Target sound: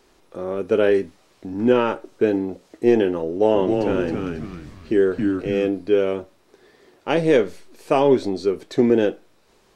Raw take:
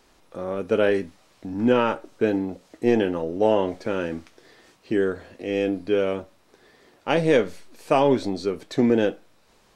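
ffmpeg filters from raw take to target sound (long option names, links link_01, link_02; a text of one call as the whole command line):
ffmpeg -i in.wav -filter_complex "[0:a]equalizer=frequency=380:width=3.1:gain=6.5,asettb=1/sr,asplit=3[link_01][link_02][link_03];[link_01]atrim=end=3.264[link_04];[link_02]atrim=start=3.26:end=5.68,asetpts=PTS-STARTPTS,afade=type=in:duration=0.004:curve=qsin,afade=type=out:start_time=2.416:duration=0.004:curve=qsin,asplit=6[link_05][link_06][link_07][link_08][link_09][link_10];[link_06]adelay=271,afreqshift=-94,volume=-4dB[link_11];[link_07]adelay=542,afreqshift=-188,volume=-12.2dB[link_12];[link_08]adelay=813,afreqshift=-282,volume=-20.4dB[link_13];[link_09]adelay=1084,afreqshift=-376,volume=-28.5dB[link_14];[link_10]adelay=1355,afreqshift=-470,volume=-36.7dB[link_15];[link_05][link_11][link_12][link_13][link_14][link_15]amix=inputs=6:normalize=0,atrim=end_sample=106722[link_16];[link_03]atrim=start=5.676[link_17];[link_04][link_16]acrossfade=duration=0.004:curve1=hsin:curve2=qsin[link_18];[link_18][link_17]acrossfade=duration=0.004:curve1=qsin:curve2=hsin" out.wav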